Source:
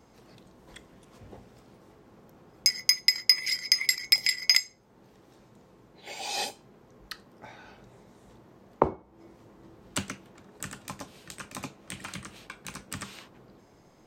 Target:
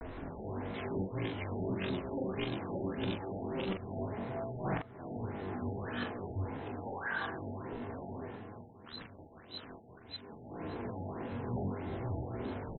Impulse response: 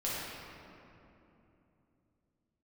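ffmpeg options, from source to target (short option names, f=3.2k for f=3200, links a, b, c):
-filter_complex "[0:a]areverse,aemphasis=mode=reproduction:type=bsi,bandreject=f=620:w=20,acompressor=threshold=-37dB:ratio=8,asetrate=88200,aresample=44100,atempo=0.5,aresample=11025,asoftclip=type=tanh:threshold=-39.5dB,aresample=44100,atempo=1.1,asplit=2[a][b];[b]adelay=42,volume=-5dB[c];[a][c]amix=inputs=2:normalize=0,asplit=2[d][e];[e]aecho=0:1:356:0.178[f];[d][f]amix=inputs=2:normalize=0,afftfilt=real='re*lt(b*sr/1024,880*pow(4200/880,0.5+0.5*sin(2*PI*1.7*pts/sr)))':imag='im*lt(b*sr/1024,880*pow(4200/880,0.5+0.5*sin(2*PI*1.7*pts/sr)))':win_size=1024:overlap=0.75,volume=9dB"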